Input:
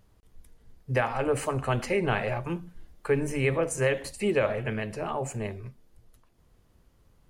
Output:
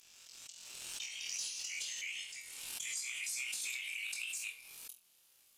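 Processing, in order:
gliding playback speed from 52% → 105%
gate on every frequency bin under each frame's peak −15 dB weak
Butterworth high-pass 2,300 Hz 96 dB per octave
high-shelf EQ 7,700 Hz +11.5 dB
downward compressor, threshold −46 dBFS, peak gain reduction 11.5 dB
leveller curve on the samples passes 3
time stretch by overlap-add 0.6×, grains 34 ms
flutter between parallel walls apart 4 metres, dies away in 0.27 s
on a send at −8.5 dB: convolution reverb RT60 0.45 s, pre-delay 15 ms
on the sum: downsampling to 32,000 Hz
background raised ahead of every attack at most 27 dB per second

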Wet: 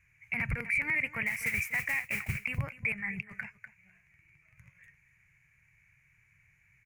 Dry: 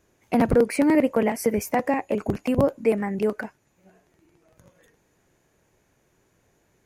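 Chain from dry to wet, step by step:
0:01.26–0:02.41: noise that follows the level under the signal 11 dB
0:02.92–0:03.43: compressor whose output falls as the input rises −29 dBFS, ratio −0.5
drawn EQ curve 140 Hz 0 dB, 260 Hz −28 dB, 520 Hz −29 dB, 1,500 Hz −6 dB, 2,300 Hz +13 dB, 3,400 Hz −20 dB, 7,000 Hz −12 dB
single-tap delay 246 ms −17.5 dB
brickwall limiter −23 dBFS, peak gain reduction 9.5 dB
low-shelf EQ 72 Hz −5.5 dB
level +2 dB

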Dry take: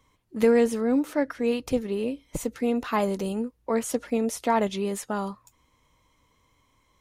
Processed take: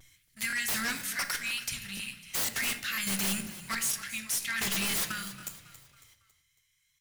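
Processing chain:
elliptic band-stop filter 160–1,600 Hz, stop band 40 dB
spectral tilt +3 dB per octave
leveller curve on the samples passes 2
in parallel at −1 dB: brickwall limiter −24 dBFS, peak gain reduction 11.5 dB
on the sum: gate pattern "xx..xx.x.....x" 88 BPM −12 dB
pitch vibrato 0.43 Hz 22 cents
wave folding −28 dBFS
echo with shifted repeats 276 ms, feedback 44%, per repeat −31 Hz, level −15 dB
on a send at −8 dB: convolution reverb RT60 0.65 s, pre-delay 15 ms
on the sum: regular buffer underruns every 0.49 s, samples 1,024, repeat, from 0:00.48
level +3 dB

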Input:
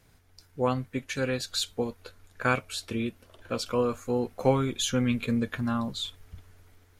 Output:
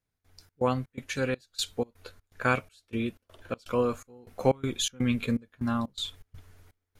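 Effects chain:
gate pattern "..xx.xx.xxx" 123 BPM −24 dB

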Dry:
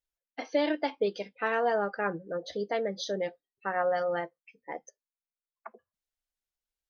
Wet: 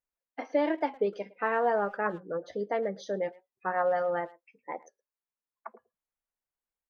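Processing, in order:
octave-band graphic EQ 125/250/500/1,000/2,000/4,000 Hz +4/+5/+4/+8/+4/−8 dB
far-end echo of a speakerphone 110 ms, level −21 dB
wow of a warped record 45 rpm, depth 100 cents
level −6 dB

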